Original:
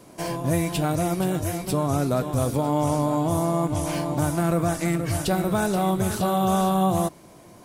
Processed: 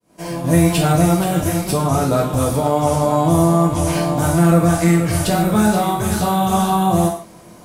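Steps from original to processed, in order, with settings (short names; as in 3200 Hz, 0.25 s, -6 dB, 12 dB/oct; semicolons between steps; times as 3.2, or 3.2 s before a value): opening faded in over 0.67 s; in parallel at +2.5 dB: vocal rider within 5 dB 2 s; on the sum: non-linear reverb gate 0.18 s falling, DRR -1.5 dB; gain -3.5 dB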